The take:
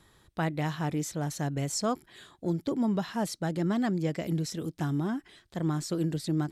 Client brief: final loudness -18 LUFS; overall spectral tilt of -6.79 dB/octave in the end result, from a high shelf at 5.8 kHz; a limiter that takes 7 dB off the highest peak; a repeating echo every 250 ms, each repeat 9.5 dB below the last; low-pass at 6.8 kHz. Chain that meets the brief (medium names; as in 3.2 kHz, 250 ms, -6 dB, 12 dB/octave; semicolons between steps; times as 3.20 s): low-pass 6.8 kHz; treble shelf 5.8 kHz -6.5 dB; peak limiter -25 dBFS; feedback delay 250 ms, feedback 33%, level -9.5 dB; trim +16 dB